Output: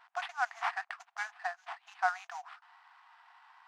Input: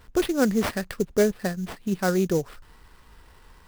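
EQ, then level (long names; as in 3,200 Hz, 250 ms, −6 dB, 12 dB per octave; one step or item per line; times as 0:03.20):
dynamic equaliser 3,900 Hz, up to −4 dB, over −46 dBFS, Q 1.4
linear-phase brick-wall high-pass 680 Hz
head-to-tape spacing loss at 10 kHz 32 dB
+3.5 dB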